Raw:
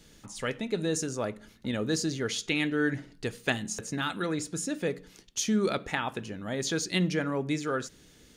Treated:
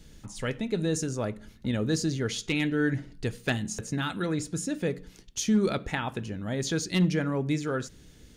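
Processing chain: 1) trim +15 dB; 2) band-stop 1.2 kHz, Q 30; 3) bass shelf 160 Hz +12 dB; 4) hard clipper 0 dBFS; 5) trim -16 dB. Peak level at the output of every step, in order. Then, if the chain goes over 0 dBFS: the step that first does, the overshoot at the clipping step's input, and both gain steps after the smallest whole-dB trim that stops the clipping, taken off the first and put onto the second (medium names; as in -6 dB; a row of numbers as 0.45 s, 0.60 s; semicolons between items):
+2.5 dBFS, +2.5 dBFS, +5.0 dBFS, 0.0 dBFS, -16.0 dBFS; step 1, 5.0 dB; step 1 +10 dB, step 5 -11 dB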